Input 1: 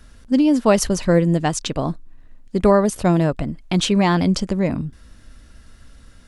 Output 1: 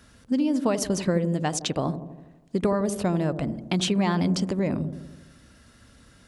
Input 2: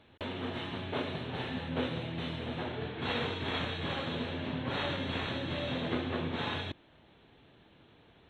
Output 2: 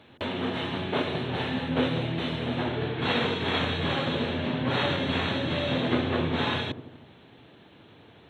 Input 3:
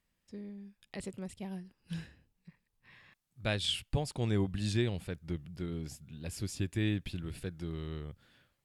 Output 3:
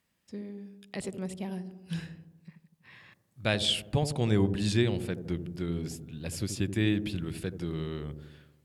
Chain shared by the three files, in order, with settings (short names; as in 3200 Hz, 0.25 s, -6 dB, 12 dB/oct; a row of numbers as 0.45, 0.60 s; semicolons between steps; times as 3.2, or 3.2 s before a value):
HPF 92 Hz 12 dB/oct; compressor 6:1, threshold -19 dBFS; on a send: dark delay 81 ms, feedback 61%, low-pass 580 Hz, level -8 dB; on the sum: normalise peaks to -12 dBFS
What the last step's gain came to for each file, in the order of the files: -2.0, +7.5, +5.5 dB